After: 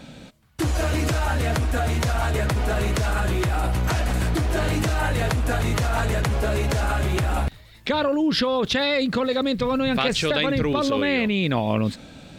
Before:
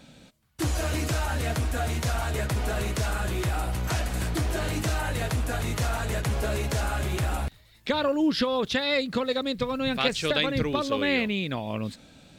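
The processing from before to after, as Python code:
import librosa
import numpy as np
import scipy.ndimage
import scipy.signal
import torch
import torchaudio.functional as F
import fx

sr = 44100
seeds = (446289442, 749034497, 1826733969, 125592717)

p1 = fx.high_shelf(x, sr, hz=3900.0, db=-6.0)
p2 = fx.over_compress(p1, sr, threshold_db=-31.0, ratio=-1.0)
y = p1 + (p2 * 10.0 ** (2.5 / 20.0))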